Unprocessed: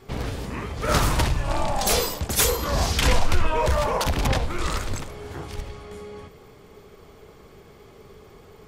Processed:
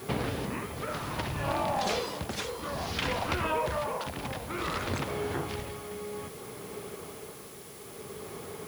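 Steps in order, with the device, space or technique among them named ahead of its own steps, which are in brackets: medium wave at night (band-pass 120–4000 Hz; compression, threshold -34 dBFS, peak gain reduction 15 dB; tremolo 0.59 Hz, depth 56%; whistle 10 kHz -61 dBFS; white noise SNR 17 dB); trim +7 dB

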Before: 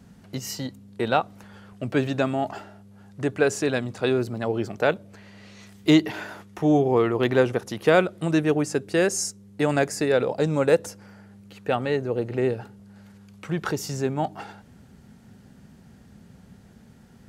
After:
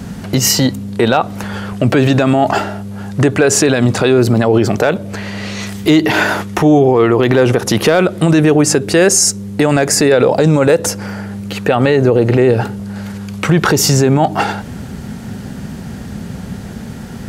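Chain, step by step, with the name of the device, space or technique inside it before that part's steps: loud club master (compression 1.5:1, threshold -29 dBFS, peak gain reduction 6.5 dB; hard clipper -14 dBFS, distortion -32 dB; loudness maximiser +24.5 dB); trim -1 dB

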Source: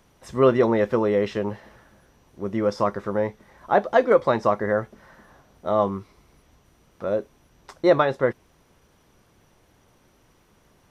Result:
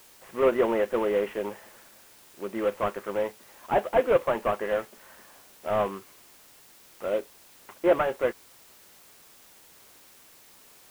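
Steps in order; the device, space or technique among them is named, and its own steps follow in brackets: army field radio (band-pass 320–3200 Hz; CVSD coder 16 kbps; white noise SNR 25 dB); trim -2 dB

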